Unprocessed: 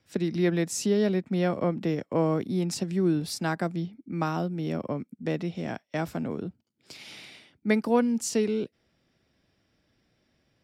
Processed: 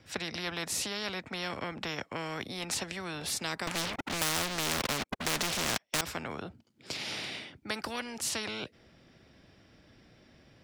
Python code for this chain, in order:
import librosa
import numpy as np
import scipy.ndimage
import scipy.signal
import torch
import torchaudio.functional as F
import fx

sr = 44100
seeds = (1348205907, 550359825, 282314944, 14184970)

y = fx.high_shelf(x, sr, hz=8700.0, db=-10.5)
y = fx.leveller(y, sr, passes=5, at=(3.67, 6.01))
y = fx.spectral_comp(y, sr, ratio=4.0)
y = F.gain(torch.from_numpy(y), -2.5).numpy()